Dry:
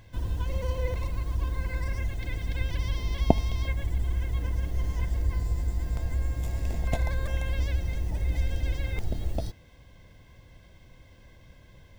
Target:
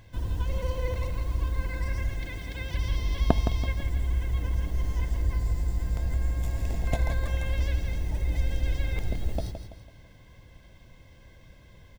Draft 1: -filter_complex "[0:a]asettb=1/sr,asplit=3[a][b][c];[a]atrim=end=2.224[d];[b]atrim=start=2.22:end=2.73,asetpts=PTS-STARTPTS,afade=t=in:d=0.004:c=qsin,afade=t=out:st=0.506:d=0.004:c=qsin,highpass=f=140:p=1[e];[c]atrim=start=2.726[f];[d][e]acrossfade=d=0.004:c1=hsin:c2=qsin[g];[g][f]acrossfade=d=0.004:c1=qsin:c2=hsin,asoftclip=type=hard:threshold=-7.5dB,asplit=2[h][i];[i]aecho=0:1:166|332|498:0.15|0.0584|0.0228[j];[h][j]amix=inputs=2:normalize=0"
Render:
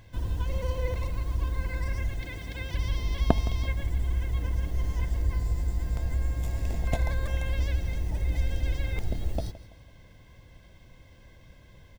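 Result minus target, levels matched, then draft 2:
echo-to-direct -8 dB
-filter_complex "[0:a]asettb=1/sr,asplit=3[a][b][c];[a]atrim=end=2.224[d];[b]atrim=start=2.22:end=2.73,asetpts=PTS-STARTPTS,afade=t=in:d=0.004:c=qsin,afade=t=out:st=0.506:d=0.004:c=qsin,highpass=f=140:p=1[e];[c]atrim=start=2.726[f];[d][e]acrossfade=d=0.004:c1=hsin:c2=qsin[g];[g][f]acrossfade=d=0.004:c1=qsin:c2=hsin,asoftclip=type=hard:threshold=-7.5dB,asplit=2[h][i];[i]aecho=0:1:166|332|498|664:0.376|0.147|0.0572|0.0223[j];[h][j]amix=inputs=2:normalize=0"

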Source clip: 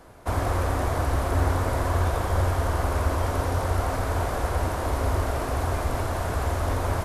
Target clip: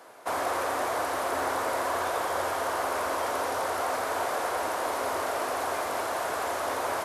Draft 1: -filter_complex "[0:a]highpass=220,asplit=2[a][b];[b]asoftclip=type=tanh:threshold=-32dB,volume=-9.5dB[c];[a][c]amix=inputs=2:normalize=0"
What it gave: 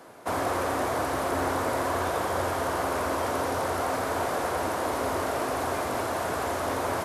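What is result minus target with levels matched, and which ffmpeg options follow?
250 Hz band +6.5 dB
-filter_complex "[0:a]highpass=480,asplit=2[a][b];[b]asoftclip=type=tanh:threshold=-32dB,volume=-9.5dB[c];[a][c]amix=inputs=2:normalize=0"

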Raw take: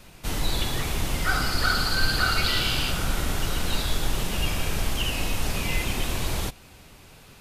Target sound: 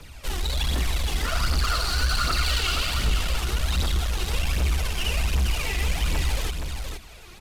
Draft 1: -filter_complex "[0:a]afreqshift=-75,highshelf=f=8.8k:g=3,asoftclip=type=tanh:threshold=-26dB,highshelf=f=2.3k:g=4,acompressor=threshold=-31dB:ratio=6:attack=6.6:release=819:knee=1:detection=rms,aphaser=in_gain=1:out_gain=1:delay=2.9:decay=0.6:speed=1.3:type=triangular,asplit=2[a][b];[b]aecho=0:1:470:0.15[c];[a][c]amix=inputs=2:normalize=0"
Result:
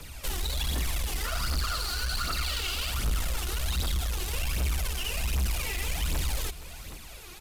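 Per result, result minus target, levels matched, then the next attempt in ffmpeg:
echo-to-direct -10.5 dB; compressor: peak gain reduction +6.5 dB; 8000 Hz band +3.5 dB
-filter_complex "[0:a]afreqshift=-75,highshelf=f=8.8k:g=3,asoftclip=type=tanh:threshold=-26dB,highshelf=f=2.3k:g=4,acompressor=threshold=-31dB:ratio=6:attack=6.6:release=819:knee=1:detection=rms,aphaser=in_gain=1:out_gain=1:delay=2.9:decay=0.6:speed=1.3:type=triangular,asplit=2[a][b];[b]aecho=0:1:470:0.501[c];[a][c]amix=inputs=2:normalize=0"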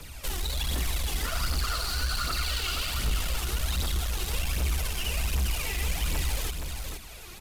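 compressor: peak gain reduction +6.5 dB; 8000 Hz band +3.5 dB
-filter_complex "[0:a]afreqshift=-75,highshelf=f=8.8k:g=3,asoftclip=type=tanh:threshold=-26dB,highshelf=f=2.3k:g=4,aphaser=in_gain=1:out_gain=1:delay=2.9:decay=0.6:speed=1.3:type=triangular,asplit=2[a][b];[b]aecho=0:1:470:0.501[c];[a][c]amix=inputs=2:normalize=0"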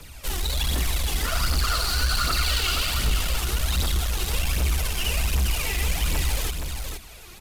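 8000 Hz band +3.5 dB
-filter_complex "[0:a]afreqshift=-75,highshelf=f=8.8k:g=-9,asoftclip=type=tanh:threshold=-26dB,highshelf=f=2.3k:g=4,aphaser=in_gain=1:out_gain=1:delay=2.9:decay=0.6:speed=1.3:type=triangular,asplit=2[a][b];[b]aecho=0:1:470:0.501[c];[a][c]amix=inputs=2:normalize=0"

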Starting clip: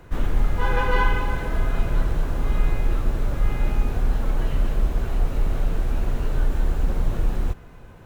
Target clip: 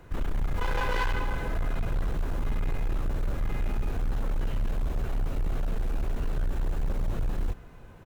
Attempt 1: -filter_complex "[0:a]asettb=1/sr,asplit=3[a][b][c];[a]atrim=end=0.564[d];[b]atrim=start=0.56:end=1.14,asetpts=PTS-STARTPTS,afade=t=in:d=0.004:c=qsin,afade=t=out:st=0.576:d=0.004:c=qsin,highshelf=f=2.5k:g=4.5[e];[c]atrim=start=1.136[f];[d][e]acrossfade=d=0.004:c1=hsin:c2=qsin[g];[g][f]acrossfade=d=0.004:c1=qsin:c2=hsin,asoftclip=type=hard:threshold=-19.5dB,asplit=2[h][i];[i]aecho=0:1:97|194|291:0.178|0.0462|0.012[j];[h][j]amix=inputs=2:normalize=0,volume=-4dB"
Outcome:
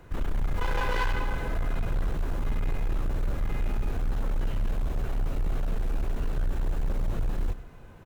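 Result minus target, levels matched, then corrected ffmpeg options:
echo-to-direct +11 dB
-filter_complex "[0:a]asettb=1/sr,asplit=3[a][b][c];[a]atrim=end=0.564[d];[b]atrim=start=0.56:end=1.14,asetpts=PTS-STARTPTS,afade=t=in:d=0.004:c=qsin,afade=t=out:st=0.576:d=0.004:c=qsin,highshelf=f=2.5k:g=4.5[e];[c]atrim=start=1.136[f];[d][e]acrossfade=d=0.004:c1=hsin:c2=qsin[g];[g][f]acrossfade=d=0.004:c1=qsin:c2=hsin,asoftclip=type=hard:threshold=-19.5dB,asplit=2[h][i];[i]aecho=0:1:97|194:0.0501|0.013[j];[h][j]amix=inputs=2:normalize=0,volume=-4dB"

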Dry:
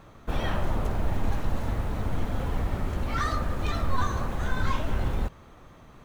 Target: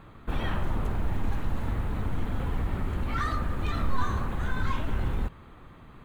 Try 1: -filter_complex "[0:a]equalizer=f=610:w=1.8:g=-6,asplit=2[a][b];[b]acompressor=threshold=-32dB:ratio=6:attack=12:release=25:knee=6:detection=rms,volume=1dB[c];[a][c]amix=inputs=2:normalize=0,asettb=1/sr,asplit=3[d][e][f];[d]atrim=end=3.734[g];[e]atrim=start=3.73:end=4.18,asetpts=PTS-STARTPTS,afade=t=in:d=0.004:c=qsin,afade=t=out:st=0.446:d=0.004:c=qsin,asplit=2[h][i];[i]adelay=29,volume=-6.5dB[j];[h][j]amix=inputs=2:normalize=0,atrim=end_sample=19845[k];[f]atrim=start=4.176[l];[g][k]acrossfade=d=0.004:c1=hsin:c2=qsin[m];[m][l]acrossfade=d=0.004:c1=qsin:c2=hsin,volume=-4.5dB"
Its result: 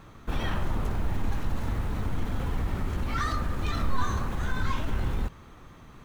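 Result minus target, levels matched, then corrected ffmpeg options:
8000 Hz band +6.0 dB
-filter_complex "[0:a]equalizer=f=610:w=1.8:g=-6,asplit=2[a][b];[b]acompressor=threshold=-32dB:ratio=6:attack=12:release=25:knee=6:detection=rms,lowpass=f=5.9k:w=0.5412,lowpass=f=5.9k:w=1.3066,volume=1dB[c];[a][c]amix=inputs=2:normalize=0,asettb=1/sr,asplit=3[d][e][f];[d]atrim=end=3.734[g];[e]atrim=start=3.73:end=4.18,asetpts=PTS-STARTPTS,afade=t=in:d=0.004:c=qsin,afade=t=out:st=0.446:d=0.004:c=qsin,asplit=2[h][i];[i]adelay=29,volume=-6.5dB[j];[h][j]amix=inputs=2:normalize=0,atrim=end_sample=19845[k];[f]atrim=start=4.176[l];[g][k]acrossfade=d=0.004:c1=hsin:c2=qsin[m];[m][l]acrossfade=d=0.004:c1=qsin:c2=hsin,volume=-4.5dB"

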